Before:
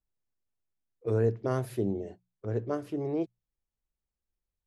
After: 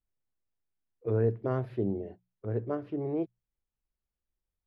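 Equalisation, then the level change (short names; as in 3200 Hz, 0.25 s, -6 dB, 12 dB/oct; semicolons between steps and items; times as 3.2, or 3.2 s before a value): air absorption 360 m; 0.0 dB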